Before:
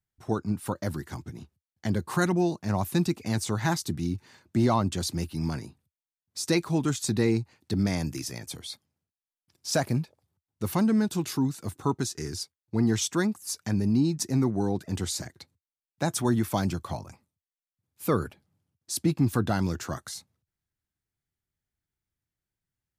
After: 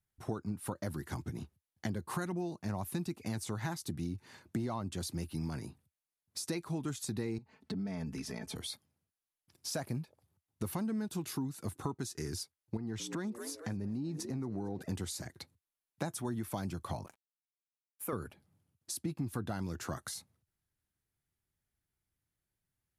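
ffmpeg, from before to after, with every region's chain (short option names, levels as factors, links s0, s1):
-filter_complex "[0:a]asettb=1/sr,asplit=3[s0][s1][s2];[s0]atrim=end=7.384[s3];[s1]atrim=start=7.38:end=8.56,asetpts=PTS-STARTPTS,afade=t=in:d=0.004:c=qsin,afade=t=out:st=1.176:d=0.004:c=qsin,aemphasis=mode=reproduction:type=75fm,aecho=1:1:4.6:0.99,atrim=end_sample=52038,acompressor=threshold=0.0126:ratio=3:attack=3.2:release=140:knee=1:detection=peak[s4];[s2]atrim=start=8.556[s5];[s3][s4]acrossfade=d=0.004:c1=hsin:c2=qsin[s6];[s6][s5]acrossfade=d=0.004:c1=qsin:c2=hsin,asettb=1/sr,asplit=3[s7][s8][s9];[s7]atrim=end=12.774[s10];[s8]atrim=start=12.77:end=14.82,asetpts=PTS-STARTPTS,afade=t=in:d=0.004:c=qsin,afade=t=out:st=2.046:d=0.004:c=qsin,lowpass=f=3500:p=1,asplit=6[s11][s12][s13][s14][s15][s16];[s12]adelay=225,afreqshift=66,volume=0.0944[s17];[s13]adelay=450,afreqshift=132,volume=0.0556[s18];[s14]adelay=675,afreqshift=198,volume=0.0327[s19];[s15]adelay=900,afreqshift=264,volume=0.0195[s20];[s16]adelay=1125,afreqshift=330,volume=0.0115[s21];[s11][s17][s18][s19][s20][s21]amix=inputs=6:normalize=0,atrim=end_sample=90405,acompressor=threshold=0.0178:ratio=2.5:attack=3.2:release=140:knee=1:detection=peak[s22];[s9]atrim=start=14.816[s23];[s10][s22]acrossfade=d=0.004:c1=hsin:c2=qsin[s24];[s24][s23]acrossfade=d=0.004:c1=qsin:c2=hsin,asettb=1/sr,asplit=3[s25][s26][s27];[s25]atrim=end=17.064[s28];[s26]atrim=start=17.06:end=18.13,asetpts=PTS-STARTPTS,afade=t=in:d=0.004:c=qsin,afade=t=out:st=1.066:d=0.004:c=qsin,highpass=f=530:p=1,equalizer=f=4200:t=o:w=0.83:g=-14,aeval=exprs='sgn(val(0))*max(abs(val(0))-0.00178,0)':c=same[s29];[s27]atrim=start=18.126[s30];[s28][s29]acrossfade=d=0.004:c1=hsin:c2=qsin[s31];[s31][s30]acrossfade=d=0.004:c1=qsin:c2=hsin,equalizer=f=11000:w=1.5:g=10.5,acompressor=threshold=0.0178:ratio=6,highshelf=f=5400:g=-7,volume=1.12"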